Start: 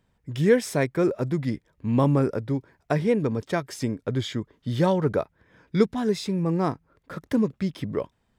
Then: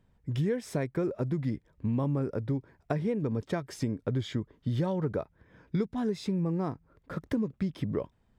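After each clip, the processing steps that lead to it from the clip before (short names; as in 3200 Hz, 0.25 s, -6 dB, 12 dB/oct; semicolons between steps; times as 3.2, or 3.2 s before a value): tilt -1.5 dB/oct; compressor 6:1, threshold -24 dBFS, peak gain reduction 12.5 dB; gain -2.5 dB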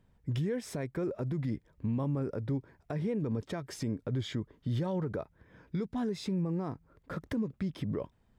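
limiter -25.5 dBFS, peak gain reduction 9.5 dB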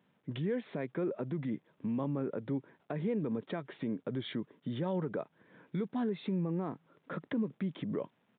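requantised 12-bit, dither none; downsampling 8000 Hz; HPF 160 Hz 24 dB/oct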